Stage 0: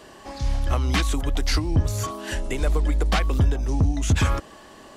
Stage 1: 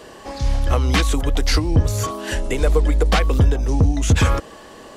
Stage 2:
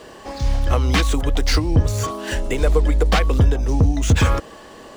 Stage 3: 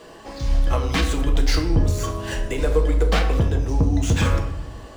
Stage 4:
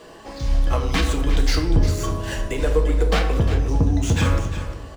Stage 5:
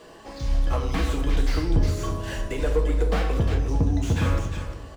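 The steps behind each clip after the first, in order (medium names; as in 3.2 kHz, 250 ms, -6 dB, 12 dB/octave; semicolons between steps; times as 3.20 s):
peaking EQ 480 Hz +8.5 dB 0.22 oct; trim +4.5 dB
median filter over 3 samples
simulated room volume 210 m³, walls mixed, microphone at 0.68 m; trim -4.5 dB
delay 353 ms -11.5 dB
slew-rate limiter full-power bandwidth 100 Hz; trim -3.5 dB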